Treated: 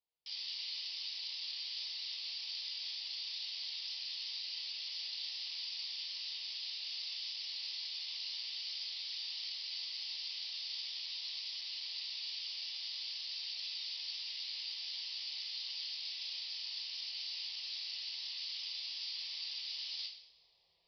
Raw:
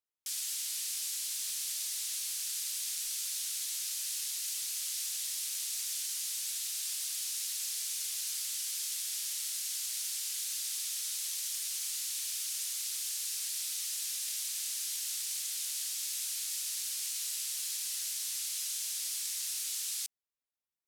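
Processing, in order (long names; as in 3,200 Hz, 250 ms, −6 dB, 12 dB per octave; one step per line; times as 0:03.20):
reversed playback
upward compression, threshold −55 dBFS
reversed playback
phaser with its sweep stopped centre 600 Hz, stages 4
coupled-rooms reverb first 0.56 s, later 1.8 s, from −18 dB, DRR −1.5 dB
harmonic generator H 3 −42 dB, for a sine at −19.5 dBFS
downsampling to 11,025 Hz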